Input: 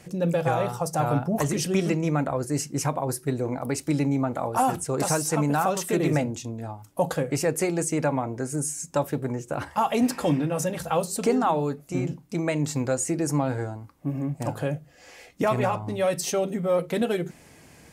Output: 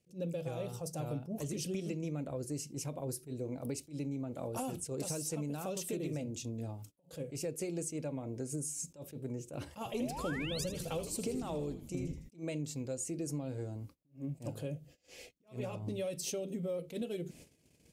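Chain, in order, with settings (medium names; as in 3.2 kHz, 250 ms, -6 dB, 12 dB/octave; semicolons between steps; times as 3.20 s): gate -48 dBFS, range -25 dB; high-order bell 1.2 kHz -12 dB; compression 6:1, threshold -34 dBFS, peak gain reduction 15.5 dB; 9.93–10.64 s: painted sound rise 370–5400 Hz -42 dBFS; 9.77–12.29 s: frequency-shifting echo 80 ms, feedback 62%, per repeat -96 Hz, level -11 dB; attacks held to a fixed rise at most 240 dB/s; trim -1.5 dB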